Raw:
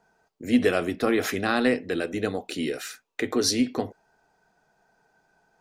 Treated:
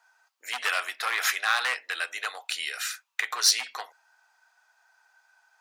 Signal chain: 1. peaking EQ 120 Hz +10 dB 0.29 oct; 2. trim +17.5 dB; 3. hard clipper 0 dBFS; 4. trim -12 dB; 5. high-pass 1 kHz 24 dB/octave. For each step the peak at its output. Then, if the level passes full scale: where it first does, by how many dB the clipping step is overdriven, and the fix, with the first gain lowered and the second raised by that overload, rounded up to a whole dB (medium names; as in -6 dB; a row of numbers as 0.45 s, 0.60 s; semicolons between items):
-8.5 dBFS, +9.0 dBFS, 0.0 dBFS, -12.0 dBFS, -8.5 dBFS; step 2, 9.0 dB; step 2 +8.5 dB, step 4 -3 dB